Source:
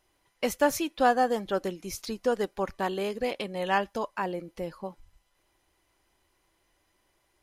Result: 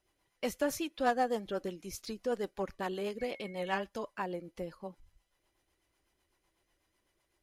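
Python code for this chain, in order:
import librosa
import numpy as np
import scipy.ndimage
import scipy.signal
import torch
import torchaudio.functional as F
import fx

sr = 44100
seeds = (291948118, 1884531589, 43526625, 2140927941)

y = fx.dmg_tone(x, sr, hz=2200.0, level_db=-45.0, at=(3.18, 3.79), fade=0.02)
y = fx.rotary(y, sr, hz=8.0)
y = fx.cheby_harmonics(y, sr, harmonics=(3, 5), levels_db=(-17, -22), full_scale_db=-12.0)
y = y * 10.0 ** (-3.5 / 20.0)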